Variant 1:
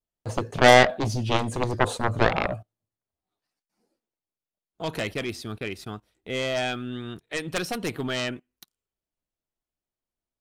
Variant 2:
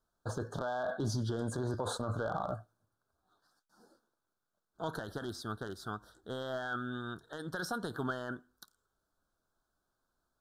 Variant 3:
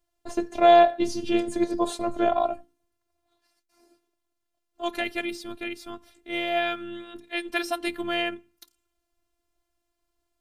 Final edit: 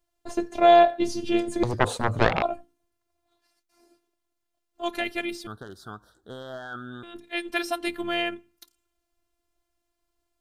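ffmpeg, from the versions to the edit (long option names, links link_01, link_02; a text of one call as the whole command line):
ffmpeg -i take0.wav -i take1.wav -i take2.wav -filter_complex "[2:a]asplit=3[link_01][link_02][link_03];[link_01]atrim=end=1.632[link_04];[0:a]atrim=start=1.628:end=2.422[link_05];[link_02]atrim=start=2.418:end=5.472[link_06];[1:a]atrim=start=5.468:end=7.032[link_07];[link_03]atrim=start=7.028[link_08];[link_04][link_05]acrossfade=duration=0.004:curve1=hsin:curve2=hsin[link_09];[link_09][link_06]acrossfade=duration=0.004:curve1=hsin:curve2=hsin[link_10];[link_10][link_07]acrossfade=duration=0.004:curve1=hsin:curve2=hsin[link_11];[link_11][link_08]acrossfade=duration=0.004:curve1=hsin:curve2=hsin" out.wav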